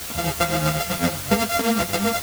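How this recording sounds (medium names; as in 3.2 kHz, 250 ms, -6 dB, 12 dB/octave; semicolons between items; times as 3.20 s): a buzz of ramps at a fixed pitch in blocks of 64 samples; tremolo triangle 7.9 Hz, depth 75%; a quantiser's noise floor 6-bit, dither triangular; a shimmering, thickened sound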